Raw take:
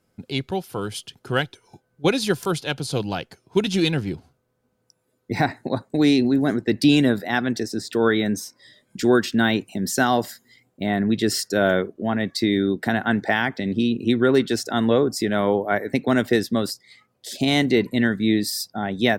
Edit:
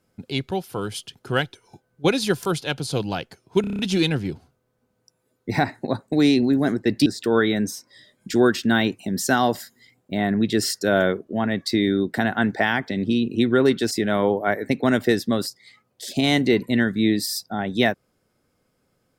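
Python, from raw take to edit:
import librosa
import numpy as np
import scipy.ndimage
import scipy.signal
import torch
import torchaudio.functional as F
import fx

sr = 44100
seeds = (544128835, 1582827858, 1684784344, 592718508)

y = fx.edit(x, sr, fx.stutter(start_s=3.61, slice_s=0.03, count=7),
    fx.cut(start_s=6.88, length_s=0.87),
    fx.cut(start_s=14.6, length_s=0.55), tone=tone)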